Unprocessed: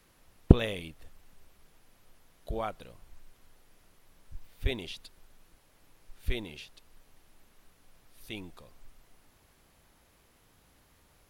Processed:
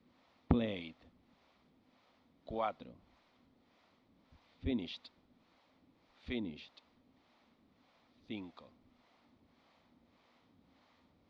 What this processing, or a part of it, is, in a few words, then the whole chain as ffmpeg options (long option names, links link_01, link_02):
guitar amplifier with harmonic tremolo: -filter_complex "[0:a]acrossover=split=460[link_01][link_02];[link_01]aeval=exprs='val(0)*(1-0.7/2+0.7/2*cos(2*PI*1.7*n/s))':channel_layout=same[link_03];[link_02]aeval=exprs='val(0)*(1-0.7/2-0.7/2*cos(2*PI*1.7*n/s))':channel_layout=same[link_04];[link_03][link_04]amix=inputs=2:normalize=0,asoftclip=type=tanh:threshold=-16.5dB,highpass=110,equalizer=frequency=130:width_type=q:width=4:gain=-7,equalizer=frequency=250:width_type=q:width=4:gain=9,equalizer=frequency=410:width_type=q:width=4:gain=-5,equalizer=frequency=1600:width_type=q:width=4:gain=-8,equalizer=frequency=2800:width_type=q:width=4:gain=-6,lowpass=frequency=4200:width=0.5412,lowpass=frequency=4200:width=1.3066,volume=1dB"